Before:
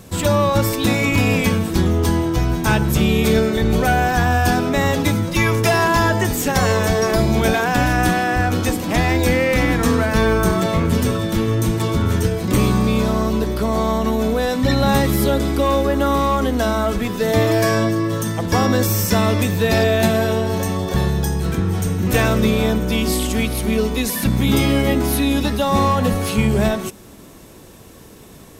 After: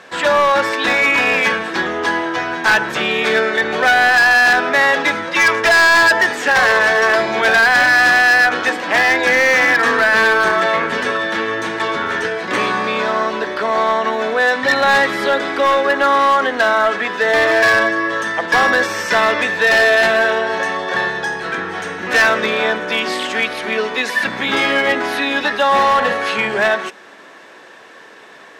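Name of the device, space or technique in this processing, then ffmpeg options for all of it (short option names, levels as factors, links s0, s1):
megaphone: -filter_complex "[0:a]asettb=1/sr,asplit=3[s0][s1][s2];[s0]atrim=end=25.684[s3];[s1]atrim=start=25.68:end=26.17,asetpts=PTS-STARTPTS,afade=t=in:d=0.004:c=qsin,afade=t=out:st=0.486:d=0.004:c=qsin,asplit=2[s4][s5];[s5]adelay=45,volume=0.376[s6];[s4][s6]amix=inputs=2:normalize=0,atrim=end_sample=21609[s7];[s2]atrim=start=26.166[s8];[s3][s7]acrossfade=d=0.004:c1=hsin:c2=qsin[s9];[s9][s8]acrossfade=d=0.004:c1=qsin:c2=hsin,highpass=620,lowpass=3400,equalizer=f=1700:t=o:w=0.38:g=10,asoftclip=type=hard:threshold=0.158,volume=2.37"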